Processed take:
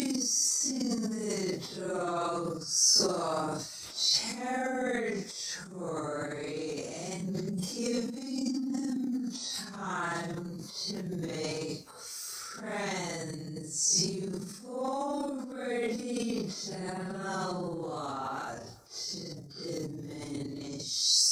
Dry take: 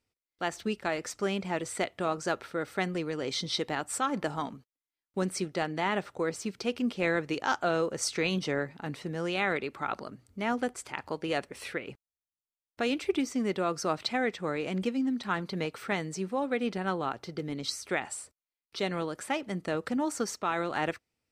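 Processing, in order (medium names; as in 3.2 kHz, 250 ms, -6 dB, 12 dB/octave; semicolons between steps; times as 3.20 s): Paulstretch 4.7×, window 0.05 s, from 13.20 s; resonant high shelf 4 kHz +11.5 dB, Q 3; transient shaper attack -4 dB, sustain +11 dB; trim -5 dB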